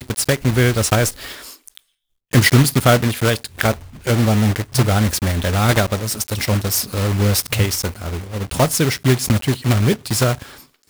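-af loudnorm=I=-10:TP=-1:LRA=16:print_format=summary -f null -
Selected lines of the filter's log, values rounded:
Input Integrated:    -17.8 LUFS
Input True Peak:      -0.9 dBTP
Input LRA:             2.6 LU
Input Threshold:     -28.3 LUFS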